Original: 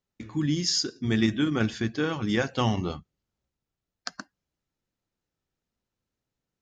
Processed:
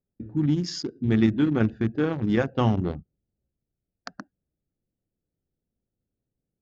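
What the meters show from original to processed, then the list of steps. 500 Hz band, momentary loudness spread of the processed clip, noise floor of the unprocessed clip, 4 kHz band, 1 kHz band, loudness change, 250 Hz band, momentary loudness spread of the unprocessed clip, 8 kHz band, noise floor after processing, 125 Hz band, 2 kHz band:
+3.0 dB, 17 LU, under -85 dBFS, -8.0 dB, +0.5 dB, +2.0 dB, +3.5 dB, 15 LU, under -10 dB, under -85 dBFS, +4.0 dB, -3.0 dB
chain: local Wiener filter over 41 samples; low-pass 4 kHz 6 dB/octave; treble shelf 2.1 kHz -9 dB; trim +4 dB

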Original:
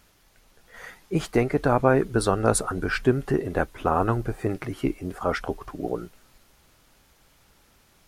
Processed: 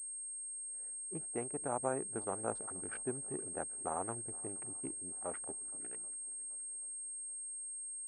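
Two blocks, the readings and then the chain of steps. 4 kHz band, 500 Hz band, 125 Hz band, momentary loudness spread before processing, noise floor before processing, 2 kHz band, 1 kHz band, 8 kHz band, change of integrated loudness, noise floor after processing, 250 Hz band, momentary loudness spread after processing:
under -30 dB, -17.5 dB, -24.0 dB, 12 LU, -61 dBFS, -21.5 dB, -15.5 dB, +1.0 dB, -14.5 dB, -45 dBFS, -19.5 dB, 4 LU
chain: local Wiener filter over 41 samples; peaking EQ 860 Hz -14 dB 2.2 oct; band-pass sweep 810 Hz -> 3 kHz, 5.51–6.15 s; on a send: shuffle delay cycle 783 ms, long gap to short 1.5:1, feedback 38%, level -22 dB; on the sum: class-D stage that switches slowly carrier 8.5 kHz; trim +1 dB

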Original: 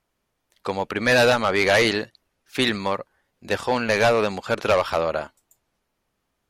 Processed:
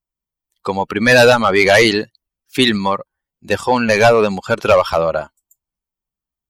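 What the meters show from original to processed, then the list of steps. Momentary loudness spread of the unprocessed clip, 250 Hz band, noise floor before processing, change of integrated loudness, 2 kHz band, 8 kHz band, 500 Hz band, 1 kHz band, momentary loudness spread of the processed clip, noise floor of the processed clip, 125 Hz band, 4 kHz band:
13 LU, +8.5 dB, -76 dBFS, +7.5 dB, +7.0 dB, +7.0 dB, +7.5 dB, +7.5 dB, 14 LU, under -85 dBFS, +8.0 dB, +6.5 dB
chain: expander on every frequency bin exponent 1.5; in parallel at +1 dB: peak limiter -21 dBFS, peak gain reduction 10.5 dB; on the sum: trim +6.5 dB

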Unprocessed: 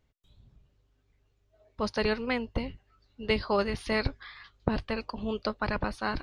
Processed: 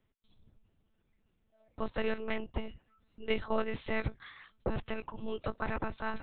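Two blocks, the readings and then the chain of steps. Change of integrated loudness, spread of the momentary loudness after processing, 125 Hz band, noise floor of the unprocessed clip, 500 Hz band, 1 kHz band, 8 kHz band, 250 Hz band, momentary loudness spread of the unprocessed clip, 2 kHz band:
-6.0 dB, 8 LU, -5.0 dB, -71 dBFS, -5.5 dB, -6.0 dB, under -25 dB, -6.5 dB, 8 LU, -6.0 dB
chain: monotone LPC vocoder at 8 kHz 220 Hz; trim -4 dB

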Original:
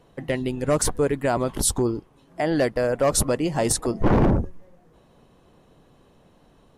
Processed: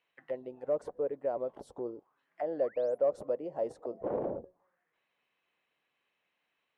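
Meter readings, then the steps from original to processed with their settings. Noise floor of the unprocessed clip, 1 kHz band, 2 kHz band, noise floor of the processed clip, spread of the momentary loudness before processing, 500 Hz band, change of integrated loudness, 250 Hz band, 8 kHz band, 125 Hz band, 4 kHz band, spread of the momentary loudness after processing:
-57 dBFS, -14.5 dB, under -20 dB, -82 dBFS, 7 LU, -8.5 dB, -12.0 dB, -19.5 dB, under -40 dB, -29.0 dB, under -30 dB, 11 LU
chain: painted sound rise, 2.63–2.98 s, 910–12000 Hz -32 dBFS; auto-wah 540–2400 Hz, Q 3.7, down, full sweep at -21.5 dBFS; trim -5.5 dB

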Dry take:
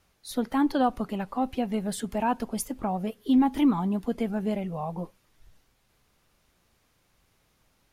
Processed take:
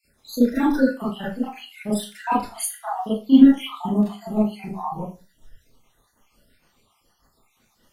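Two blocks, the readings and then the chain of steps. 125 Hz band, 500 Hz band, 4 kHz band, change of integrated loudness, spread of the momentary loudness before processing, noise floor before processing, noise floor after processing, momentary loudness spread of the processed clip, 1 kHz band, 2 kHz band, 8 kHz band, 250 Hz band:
+2.5 dB, +3.5 dB, +6.0 dB, +6.5 dB, 10 LU, -69 dBFS, -66 dBFS, 17 LU, +2.0 dB, +6.5 dB, +6.5 dB, +7.0 dB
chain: random holes in the spectrogram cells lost 65%; Schroeder reverb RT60 0.31 s, combs from 26 ms, DRR -10 dB; trim -1 dB

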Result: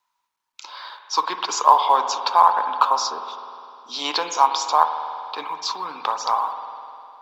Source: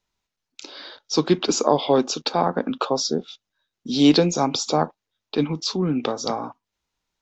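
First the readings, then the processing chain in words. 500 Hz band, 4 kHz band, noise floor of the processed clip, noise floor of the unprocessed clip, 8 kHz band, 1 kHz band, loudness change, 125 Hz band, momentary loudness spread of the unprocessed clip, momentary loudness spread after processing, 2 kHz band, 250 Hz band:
-8.5 dB, -1.0 dB, -76 dBFS, -84 dBFS, no reading, +10.0 dB, +1.5 dB, under -30 dB, 15 LU, 20 LU, +2.5 dB, -21.5 dB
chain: resonant high-pass 990 Hz, resonance Q 7.4; companded quantiser 8-bit; spring tank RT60 2.7 s, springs 50 ms, chirp 75 ms, DRR 7 dB; trim -1.5 dB

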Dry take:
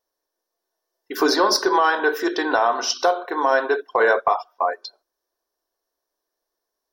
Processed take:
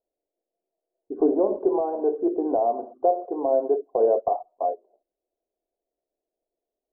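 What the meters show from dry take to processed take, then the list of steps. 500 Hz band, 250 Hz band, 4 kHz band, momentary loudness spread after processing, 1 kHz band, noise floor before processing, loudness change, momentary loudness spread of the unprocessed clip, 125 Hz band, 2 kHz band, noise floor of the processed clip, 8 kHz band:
-0.5 dB, 0.0 dB, under -40 dB, 7 LU, -7.5 dB, -82 dBFS, -4.0 dB, 8 LU, no reading, under -40 dB, under -85 dBFS, under -40 dB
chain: elliptic low-pass 700 Hz, stop band 70 dB

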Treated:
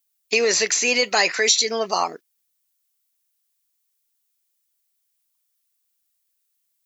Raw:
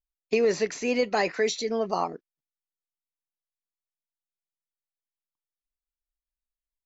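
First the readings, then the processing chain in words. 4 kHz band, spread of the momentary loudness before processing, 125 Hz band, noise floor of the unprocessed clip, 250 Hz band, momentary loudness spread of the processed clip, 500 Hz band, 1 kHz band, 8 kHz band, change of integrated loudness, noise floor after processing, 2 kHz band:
+15.0 dB, 6 LU, -4.0 dB, under -85 dBFS, -2.5 dB, 7 LU, +1.5 dB, +5.0 dB, no reading, +7.5 dB, -73 dBFS, +11.0 dB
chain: tilt EQ +4.5 dB/octave; in parallel at -2 dB: peak limiter -19 dBFS, peak gain reduction 10.5 dB; on the sum: trim +2.5 dB

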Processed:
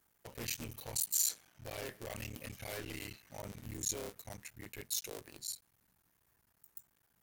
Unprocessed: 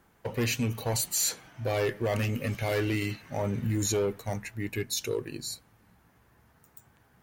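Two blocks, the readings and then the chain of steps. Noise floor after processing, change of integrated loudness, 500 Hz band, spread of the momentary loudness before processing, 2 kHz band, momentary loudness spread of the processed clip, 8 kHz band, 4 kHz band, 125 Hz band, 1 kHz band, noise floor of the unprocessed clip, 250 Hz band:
-76 dBFS, -9.0 dB, -17.0 dB, 9 LU, -12.5 dB, 17 LU, -4.5 dB, -8.5 dB, -18.0 dB, -14.0 dB, -64 dBFS, -17.5 dB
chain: cycle switcher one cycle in 3, muted; pre-emphasis filter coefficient 0.8; loudspeaker Doppler distortion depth 0.11 ms; trim -1.5 dB

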